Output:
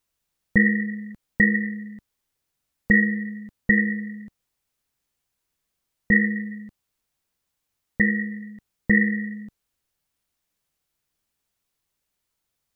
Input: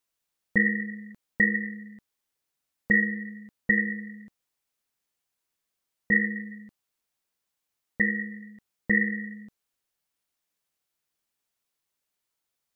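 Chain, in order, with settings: bass shelf 160 Hz +11.5 dB; trim +3 dB

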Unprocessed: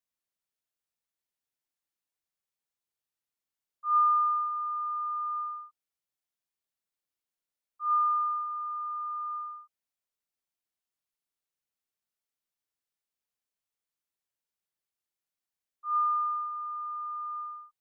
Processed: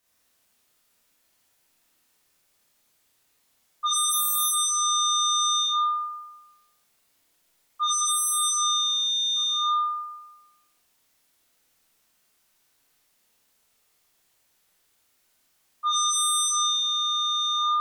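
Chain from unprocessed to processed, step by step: Schroeder reverb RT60 1.1 s, combs from 25 ms, DRR -7 dB; sine folder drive 15 dB, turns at -17.5 dBFS; trim -3.5 dB

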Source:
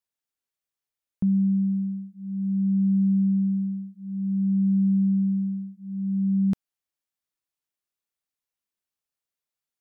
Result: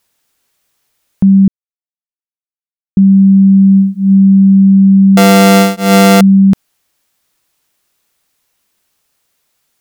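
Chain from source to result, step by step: 1.48–2.97 s: mute; 5.17–6.21 s: sorted samples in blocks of 64 samples; loudness maximiser +27 dB; trim -1 dB

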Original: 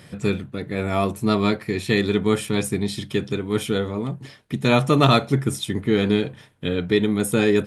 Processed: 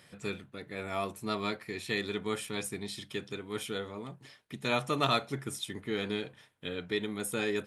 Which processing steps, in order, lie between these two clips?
bass shelf 400 Hz -11 dB; trim -8.5 dB

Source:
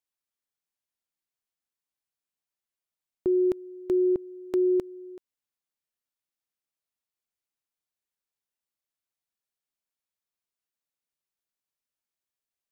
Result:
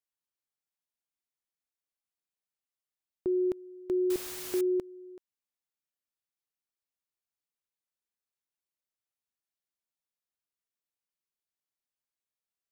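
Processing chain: 4.10–4.61 s: word length cut 6-bit, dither triangular; trim -5 dB

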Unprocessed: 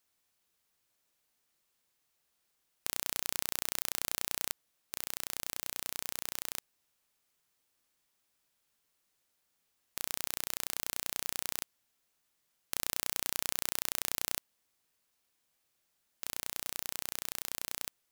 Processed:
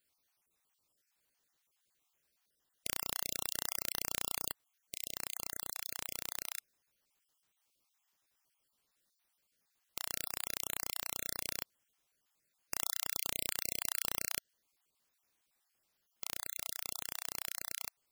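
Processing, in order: random holes in the spectrogram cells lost 38%

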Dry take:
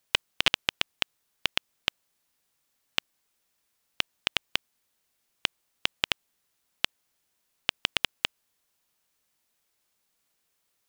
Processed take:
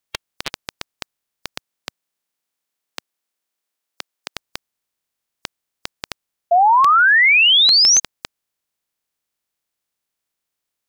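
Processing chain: spectral peaks clipped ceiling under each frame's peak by 15 dB; 1.57–4.33 s: high-pass 97 Hz -> 310 Hz 12 dB/octave; 6.51–8.00 s: painted sound rise 670–6500 Hz -7 dBFS; trim -5 dB

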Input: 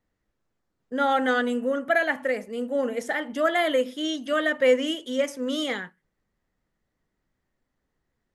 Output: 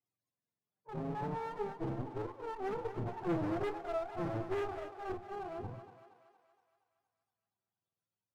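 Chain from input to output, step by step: spectrum inverted on a logarithmic axis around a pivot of 460 Hz; Doppler pass-by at 3.51 s, 16 m/s, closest 18 m; bass shelf 110 Hz -8 dB; one-sided clip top -43 dBFS, bottom -24.5 dBFS; flange 0.44 Hz, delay 2.9 ms, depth 3.2 ms, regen +62%; thinning echo 234 ms, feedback 58%, high-pass 420 Hz, level -9 dB; trim +1 dB

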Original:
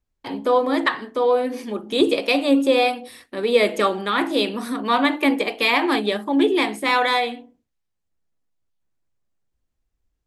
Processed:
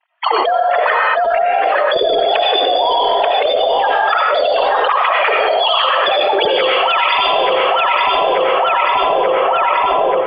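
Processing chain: formants replaced by sine waves; high-pass 570 Hz 24 dB/octave; reverb removal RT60 1.2 s; tilt EQ -3 dB/octave; level rider gain up to 10 dB; peak limiter -11 dBFS, peak gain reduction 10 dB; formant-preserving pitch shift +5.5 st; filtered feedback delay 884 ms, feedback 40%, low-pass 2.1 kHz, level -9.5 dB; algorithmic reverb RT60 0.77 s, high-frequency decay 0.85×, pre-delay 50 ms, DRR -1.5 dB; level flattener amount 100%; trim -2 dB

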